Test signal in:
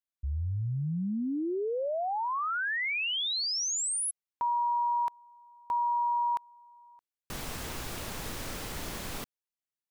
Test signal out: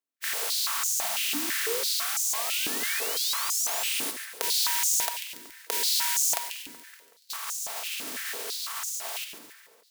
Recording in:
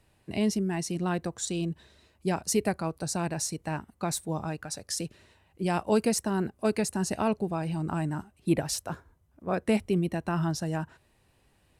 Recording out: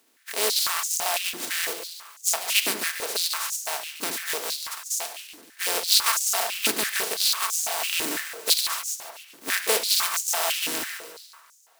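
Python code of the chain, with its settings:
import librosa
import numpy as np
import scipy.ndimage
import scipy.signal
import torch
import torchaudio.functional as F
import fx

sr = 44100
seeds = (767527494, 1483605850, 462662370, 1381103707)

y = fx.spec_flatten(x, sr, power=0.12)
y = fx.echo_split(y, sr, split_hz=1900.0, low_ms=188, high_ms=142, feedback_pct=52, wet_db=-9.5)
y = fx.room_shoebox(y, sr, seeds[0], volume_m3=2800.0, walls='furnished', distance_m=1.6)
y = fx.filter_held_highpass(y, sr, hz=6.0, low_hz=290.0, high_hz=6600.0)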